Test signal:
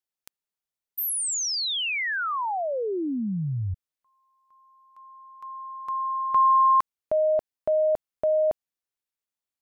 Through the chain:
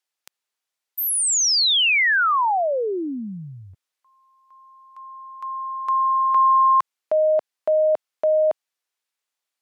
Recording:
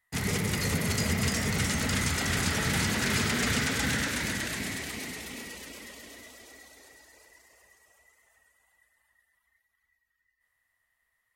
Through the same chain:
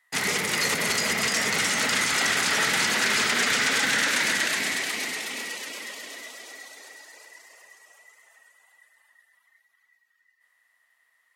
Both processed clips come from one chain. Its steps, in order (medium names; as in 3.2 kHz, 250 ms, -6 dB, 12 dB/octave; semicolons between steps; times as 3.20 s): bass shelf 72 Hz -10.5 dB; peak limiter -21 dBFS; frequency weighting A; trim +8.5 dB